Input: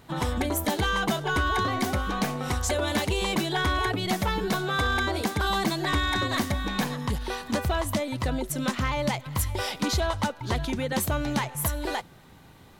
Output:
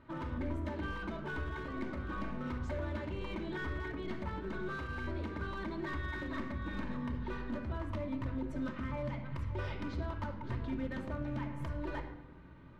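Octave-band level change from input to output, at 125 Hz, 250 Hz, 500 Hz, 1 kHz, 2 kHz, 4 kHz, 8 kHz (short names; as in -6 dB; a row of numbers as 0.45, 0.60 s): -9.5 dB, -9.5 dB, -12.5 dB, -16.0 dB, -14.0 dB, -23.5 dB, under -30 dB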